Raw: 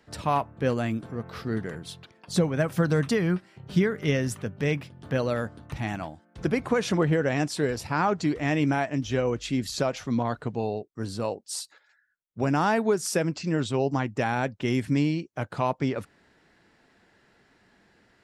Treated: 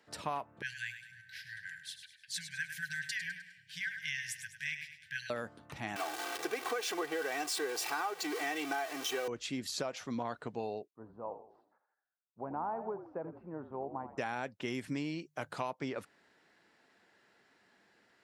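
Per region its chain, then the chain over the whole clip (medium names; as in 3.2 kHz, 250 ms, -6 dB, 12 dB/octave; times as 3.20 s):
0.62–5.30 s: brick-wall FIR band-stop 170–1500 Hz + resonant low shelf 800 Hz -12.5 dB, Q 3 + feedback delay 102 ms, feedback 42%, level -10 dB
5.96–9.28 s: jump at every zero crossing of -27 dBFS + high-pass 420 Hz + comb 2.6 ms, depth 79%
10.91–14.18 s: four-pole ladder low-pass 1.1 kHz, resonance 50% + frequency-shifting echo 83 ms, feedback 46%, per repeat -47 Hz, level -11 dB
15.21–15.71 s: treble shelf 4.2 kHz +6.5 dB + hum notches 50/100/150 Hz
whole clip: high-pass 400 Hz 6 dB/octave; compression, threshold -28 dBFS; trim -4.5 dB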